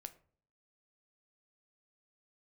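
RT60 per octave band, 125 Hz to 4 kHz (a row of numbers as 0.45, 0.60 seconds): 0.70, 0.65, 0.55, 0.45, 0.35, 0.25 seconds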